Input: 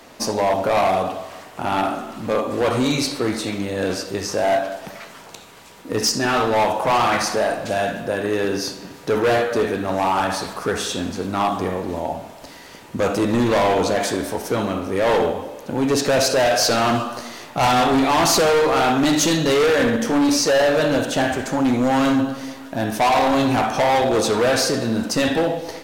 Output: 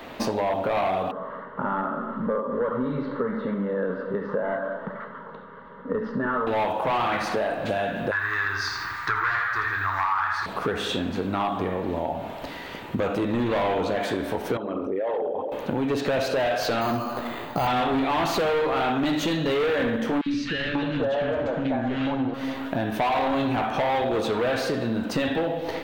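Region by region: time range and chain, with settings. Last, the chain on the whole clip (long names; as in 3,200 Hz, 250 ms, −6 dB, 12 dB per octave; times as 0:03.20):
0:01.11–0:06.47: low-pass filter 2,300 Hz 24 dB per octave + phaser with its sweep stopped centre 490 Hz, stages 8
0:08.11–0:10.46: drawn EQ curve 110 Hz 0 dB, 220 Hz −27 dB, 330 Hz −13 dB, 550 Hz −25 dB, 1,100 Hz +12 dB, 1,900 Hz +11 dB, 2,900 Hz −6 dB, 4,900 Hz +7 dB, 12,000 Hz −7 dB + feedback echo at a low word length 81 ms, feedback 35%, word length 7 bits, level −8 dB
0:14.57–0:15.52: spectral envelope exaggerated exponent 2 + RIAA equalisation recording + downward compressor 3 to 1, threshold −25 dBFS
0:16.81–0:17.67: high-shelf EQ 3,100 Hz −11.5 dB + bad sample-rate conversion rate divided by 8×, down none, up hold
0:20.21–0:22.34: noise that follows the level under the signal 33 dB + high-frequency loss of the air 140 metres + three-band delay without the direct sound highs, lows, mids 50/540 ms, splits 320/1,600 Hz
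whole clip: flat-topped bell 7,900 Hz −14 dB; downward compressor 5 to 1, threshold −29 dBFS; level +5 dB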